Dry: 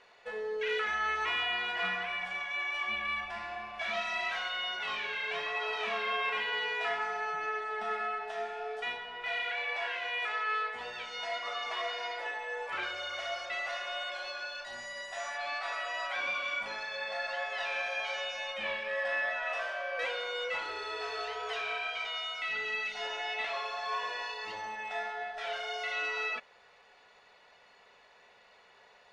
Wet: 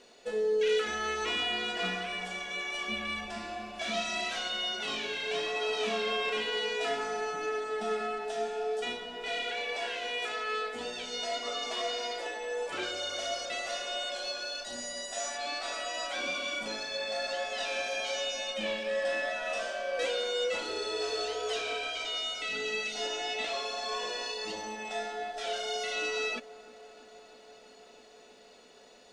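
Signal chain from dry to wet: graphic EQ 125/250/1000/2000/8000 Hz -9/+11/-10/-10/+9 dB; feedback echo behind a low-pass 326 ms, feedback 82%, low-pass 1.3 kHz, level -19 dB; trim +7 dB

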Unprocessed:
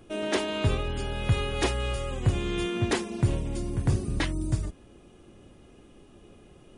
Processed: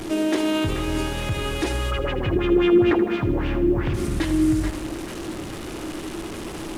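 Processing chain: one-bit delta coder 64 kbps, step -34.5 dBFS; peak limiter -23 dBFS, peak gain reduction 10 dB; peaking EQ 320 Hz +12 dB 0.25 oct; band-passed feedback delay 435 ms, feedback 63%, band-pass 1.3 kHz, level -5 dB; 1.90–3.93 s: LFO low-pass sine 7.3 Hz -> 2.1 Hz 330–3000 Hz; bit-crushed delay 80 ms, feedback 55%, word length 9-bit, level -12 dB; trim +5.5 dB

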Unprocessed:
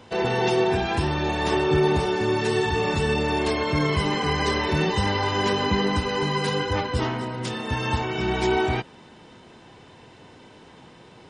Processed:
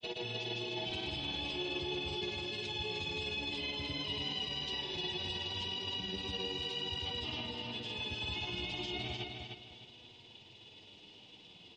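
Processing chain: resonant high shelf 2.3 kHz +12 dB, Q 3; peak limiter -15.5 dBFS, peak gain reduction 13.5 dB; flange 0.21 Hz, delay 7.6 ms, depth 4.4 ms, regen +40%; granulator, pitch spread up and down by 0 st; speed mistake 25 fps video run at 24 fps; distance through air 120 m; on a send: feedback delay 303 ms, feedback 28%, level -5 dB; on the sum: trim -9 dB

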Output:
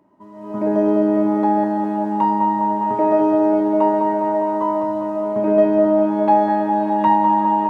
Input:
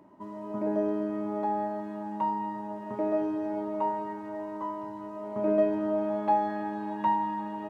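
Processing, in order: level rider gain up to 14 dB; on a send: band-passed feedback delay 203 ms, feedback 84%, band-pass 640 Hz, level -4.5 dB; on the sum: trim -3 dB

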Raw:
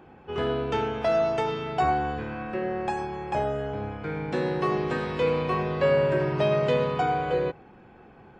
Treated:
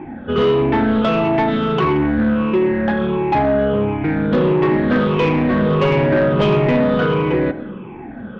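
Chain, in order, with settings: drifting ripple filter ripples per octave 0.73, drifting -1.5 Hz, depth 15 dB; elliptic low-pass 3.5 kHz; peaking EQ 230 Hz +11.5 dB 0.99 oct; band-stop 740 Hz, Q 12; in parallel at -2 dB: compression, threshold -29 dBFS, peak gain reduction 13 dB; on the sum: saturation -17 dBFS, distortion -14 dB; reverberation RT60 0.75 s, pre-delay 80 ms, DRR 15 dB; loudspeaker Doppler distortion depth 0.11 ms; trim +7 dB

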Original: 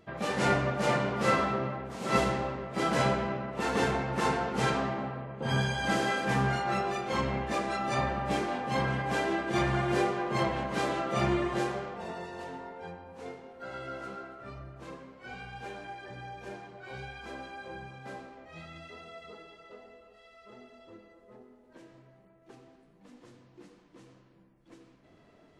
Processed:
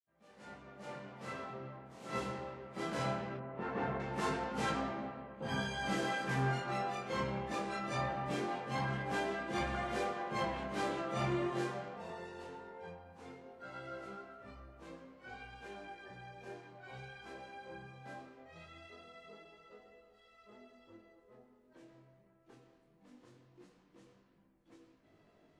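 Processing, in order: fade-in on the opening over 4.24 s; 3.37–4.00 s: low-pass 1.8 kHz 12 dB/octave; chorus 0.2 Hz, delay 18.5 ms, depth 6.4 ms; trim -4 dB

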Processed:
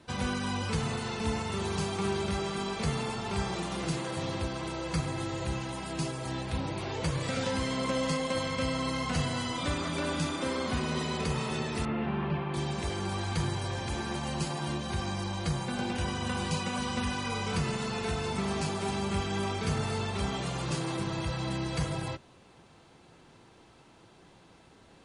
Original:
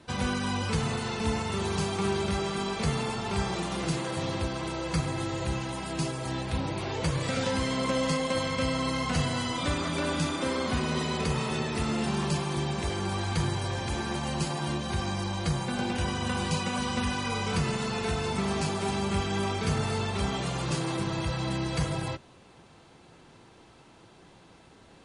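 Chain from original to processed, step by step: 11.85–12.54 s: inverse Chebyshev low-pass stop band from 8.2 kHz, stop band 60 dB; trim -2.5 dB

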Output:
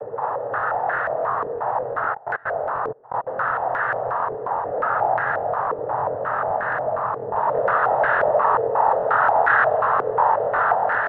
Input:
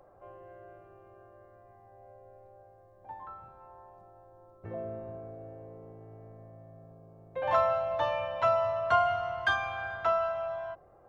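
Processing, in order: spectral levelling over time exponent 0.2; noise-vocoded speech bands 12; delay 113 ms -6.5 dB; flange 0.83 Hz, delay 8.3 ms, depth 9.5 ms, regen -75%; echo with a slow build-up 88 ms, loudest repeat 5, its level -13.5 dB; 2.13–3.24 s: trance gate "xxxx..x.x" 159 bpm -24 dB; crackling interface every 0.12 s, samples 1024, repeat, from 0.58 s; step-sequenced low-pass 5.6 Hz 450–1600 Hz

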